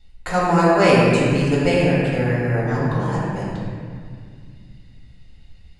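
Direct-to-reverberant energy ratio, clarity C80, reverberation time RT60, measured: -8.5 dB, -1.0 dB, 2.1 s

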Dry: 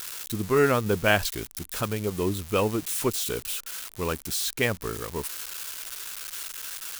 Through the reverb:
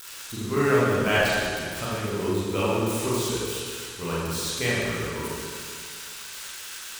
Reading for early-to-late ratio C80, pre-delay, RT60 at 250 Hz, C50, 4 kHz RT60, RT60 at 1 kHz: -1.5 dB, 30 ms, 2.1 s, -3.5 dB, 2.0 s, 2.1 s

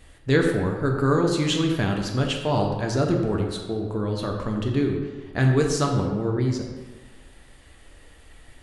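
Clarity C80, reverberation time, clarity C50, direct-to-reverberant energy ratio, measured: 5.5 dB, 1.3 s, 4.0 dB, 1.0 dB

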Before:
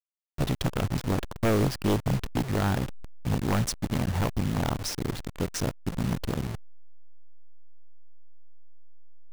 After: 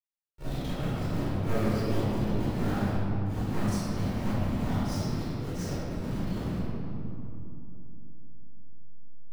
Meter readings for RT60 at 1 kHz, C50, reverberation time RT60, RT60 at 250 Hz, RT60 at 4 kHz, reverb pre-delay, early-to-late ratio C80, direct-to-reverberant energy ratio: 2.7 s, -8.0 dB, 3.0 s, 4.3 s, 1.5 s, 31 ms, -4.5 dB, -16.5 dB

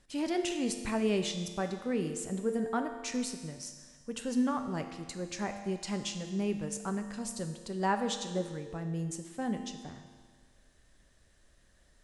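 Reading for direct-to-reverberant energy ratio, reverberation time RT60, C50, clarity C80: 6.0 dB, 1.6 s, 8.0 dB, 9.0 dB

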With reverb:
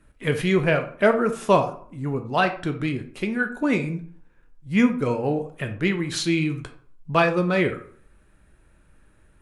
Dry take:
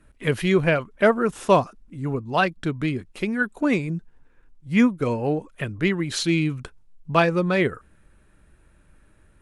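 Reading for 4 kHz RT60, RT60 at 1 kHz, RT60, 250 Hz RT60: 0.30 s, 0.50 s, 0.50 s, 0.55 s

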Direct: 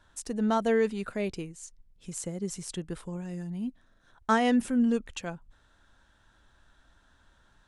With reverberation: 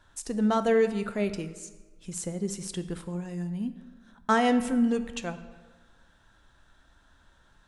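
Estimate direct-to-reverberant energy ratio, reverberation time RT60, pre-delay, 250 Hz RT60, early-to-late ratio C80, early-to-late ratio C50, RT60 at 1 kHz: 10.0 dB, 1.4 s, 6 ms, 1.4 s, 14.0 dB, 12.5 dB, 1.4 s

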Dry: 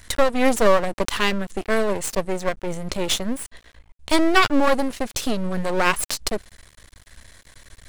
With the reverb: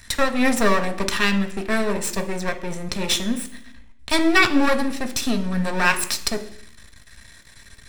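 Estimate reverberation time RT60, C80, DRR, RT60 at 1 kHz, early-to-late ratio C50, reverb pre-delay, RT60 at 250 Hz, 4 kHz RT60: 0.65 s, 15.5 dB, 4.5 dB, 0.70 s, 12.5 dB, 3 ms, 0.95 s, 0.85 s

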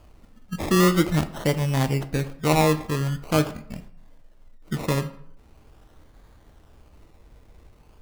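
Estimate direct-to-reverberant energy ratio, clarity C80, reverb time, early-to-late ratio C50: 9.0 dB, 17.5 dB, 0.70 s, 14.0 dB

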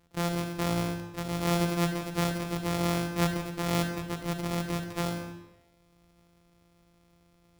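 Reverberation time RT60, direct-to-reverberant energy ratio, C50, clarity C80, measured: 1.0 s, 4.5 dB, 6.5 dB, 8.5 dB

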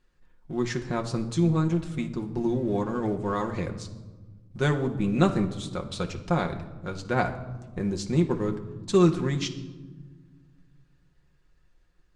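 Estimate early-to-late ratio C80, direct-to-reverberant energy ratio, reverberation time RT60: 14.0 dB, 3.0 dB, 1.3 s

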